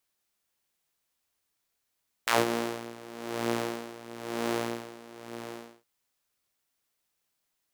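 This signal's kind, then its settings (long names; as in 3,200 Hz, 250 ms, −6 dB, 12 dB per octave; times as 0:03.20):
subtractive patch with tremolo A#2, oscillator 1 saw, oscillator 2 saw, detune 24 cents, noise −27 dB, filter highpass, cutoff 330 Hz, Q 1.3, filter envelope 2.5 octaves, filter decay 0.12 s, filter sustain 0%, attack 8.2 ms, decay 0.17 s, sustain −17 dB, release 1.16 s, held 2.41 s, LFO 1 Hz, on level 16 dB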